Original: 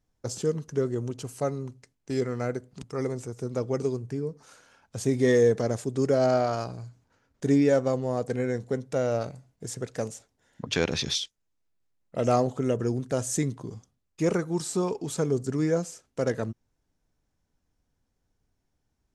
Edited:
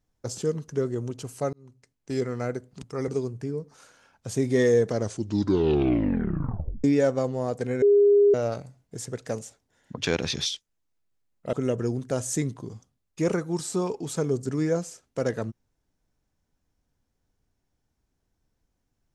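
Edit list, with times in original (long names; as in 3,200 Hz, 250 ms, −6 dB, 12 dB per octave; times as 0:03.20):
0:01.53–0:02.11: fade in
0:03.08–0:03.77: remove
0:05.62: tape stop 1.91 s
0:08.51–0:09.03: beep over 407 Hz −14 dBFS
0:12.22–0:12.54: remove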